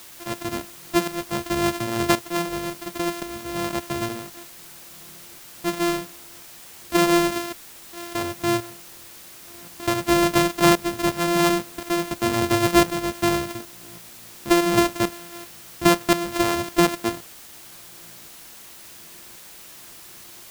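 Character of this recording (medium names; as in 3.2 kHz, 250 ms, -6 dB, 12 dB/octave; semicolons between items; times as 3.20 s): a buzz of ramps at a fixed pitch in blocks of 128 samples; tremolo saw up 0.93 Hz, depth 75%; a quantiser's noise floor 8-bit, dither triangular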